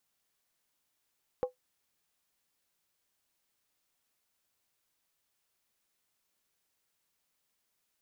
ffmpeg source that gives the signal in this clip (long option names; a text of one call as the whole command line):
ffmpeg -f lavfi -i "aevalsrc='0.0708*pow(10,-3*t/0.13)*sin(2*PI*504*t)+0.0224*pow(10,-3*t/0.103)*sin(2*PI*803.4*t)+0.00708*pow(10,-3*t/0.089)*sin(2*PI*1076.5*t)+0.00224*pow(10,-3*t/0.086)*sin(2*PI*1157.2*t)+0.000708*pow(10,-3*t/0.08)*sin(2*PI*1337.1*t)':duration=0.63:sample_rate=44100" out.wav